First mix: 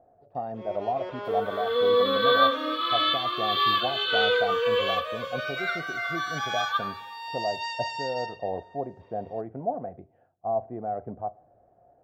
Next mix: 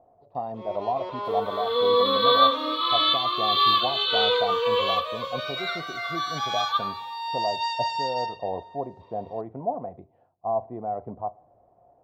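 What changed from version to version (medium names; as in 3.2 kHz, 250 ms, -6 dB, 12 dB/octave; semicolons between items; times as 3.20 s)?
master: add graphic EQ with 31 bands 1 kHz +11 dB, 1.6 kHz -9 dB, 4 kHz +10 dB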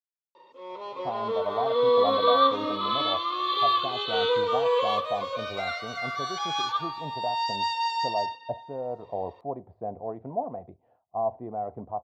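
speech: entry +0.70 s; second sound: add treble shelf 2.5 kHz -8 dB; reverb: off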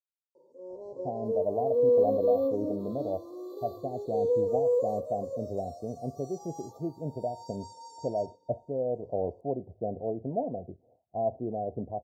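speech +4.5 dB; master: add inverse Chebyshev band-stop 1.5–3 kHz, stop band 70 dB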